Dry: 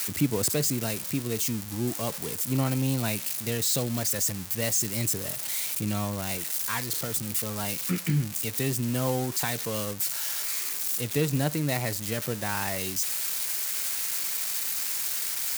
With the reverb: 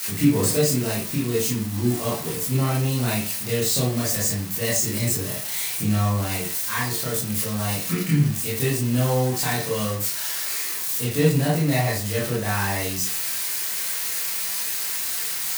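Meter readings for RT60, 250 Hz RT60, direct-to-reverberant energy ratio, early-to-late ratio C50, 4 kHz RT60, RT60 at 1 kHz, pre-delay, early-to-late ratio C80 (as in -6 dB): 0.40 s, 0.40 s, -7.5 dB, 3.5 dB, 0.25 s, 0.40 s, 20 ms, 9.5 dB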